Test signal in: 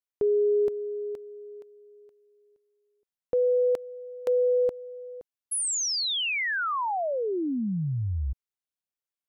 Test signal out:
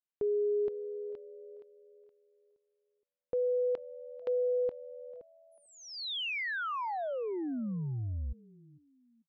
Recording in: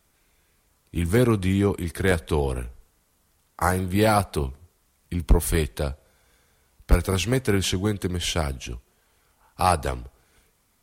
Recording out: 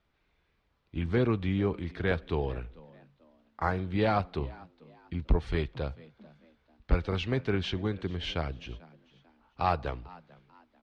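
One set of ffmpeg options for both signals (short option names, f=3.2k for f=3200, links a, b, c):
-filter_complex "[0:a]lowpass=f=4k:w=0.5412,lowpass=f=4k:w=1.3066,asplit=2[a][b];[b]asplit=2[c][d];[c]adelay=443,afreqshift=81,volume=-22.5dB[e];[d]adelay=886,afreqshift=162,volume=-31.9dB[f];[e][f]amix=inputs=2:normalize=0[g];[a][g]amix=inputs=2:normalize=0,volume=-7dB"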